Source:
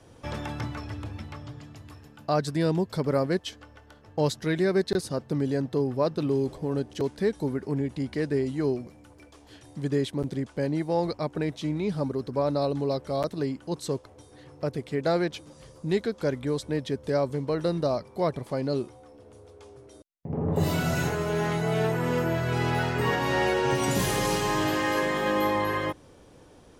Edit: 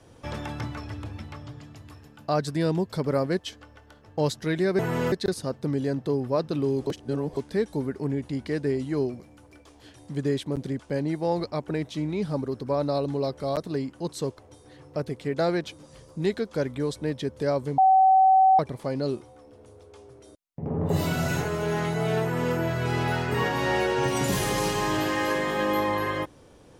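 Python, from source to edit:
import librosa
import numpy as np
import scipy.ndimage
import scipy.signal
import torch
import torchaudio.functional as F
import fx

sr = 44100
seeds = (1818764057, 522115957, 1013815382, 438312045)

y = fx.edit(x, sr, fx.reverse_span(start_s=6.54, length_s=0.5),
    fx.bleep(start_s=17.45, length_s=0.81, hz=762.0, db=-14.0),
    fx.duplicate(start_s=21.9, length_s=0.33, to_s=4.79), tone=tone)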